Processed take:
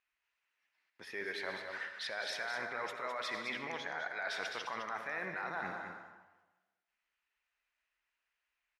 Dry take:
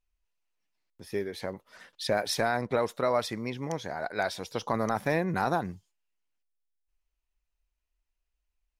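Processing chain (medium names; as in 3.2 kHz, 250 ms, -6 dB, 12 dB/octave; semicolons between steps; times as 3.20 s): peak limiter -24 dBFS, peak gain reduction 9 dB; band-pass filter 1.8 kHz, Q 1.7; reverberation RT60 1.2 s, pre-delay 52 ms, DRR 7.5 dB; reverse; compression, threshold -48 dBFS, peak gain reduction 11 dB; reverse; delay 209 ms -7.5 dB; trim +11.5 dB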